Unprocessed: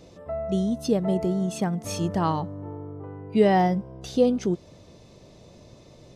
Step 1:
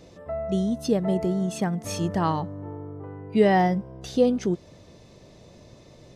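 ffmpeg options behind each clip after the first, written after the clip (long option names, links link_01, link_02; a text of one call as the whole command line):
ffmpeg -i in.wav -af "equalizer=frequency=1800:width=3.4:gain=4" out.wav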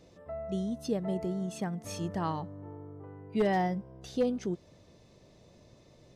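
ffmpeg -i in.wav -af "aeval=exprs='0.299*(abs(mod(val(0)/0.299+3,4)-2)-1)':channel_layout=same,volume=-8.5dB" out.wav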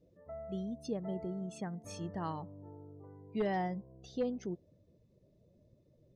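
ffmpeg -i in.wav -af "afftdn=noise_reduction=18:noise_floor=-52,volume=-6dB" out.wav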